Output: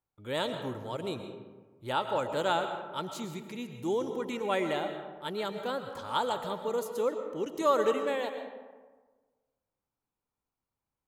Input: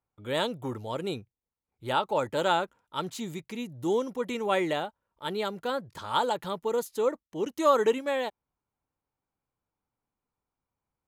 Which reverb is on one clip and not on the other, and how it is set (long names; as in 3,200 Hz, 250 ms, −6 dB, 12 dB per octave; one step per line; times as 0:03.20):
comb and all-pass reverb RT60 1.4 s, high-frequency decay 0.45×, pre-delay 80 ms, DRR 7 dB
level −3.5 dB